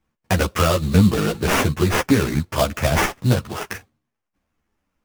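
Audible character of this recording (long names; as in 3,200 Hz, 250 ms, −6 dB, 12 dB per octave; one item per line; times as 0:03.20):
aliases and images of a low sample rate 4,100 Hz, jitter 20%
a shimmering, thickened sound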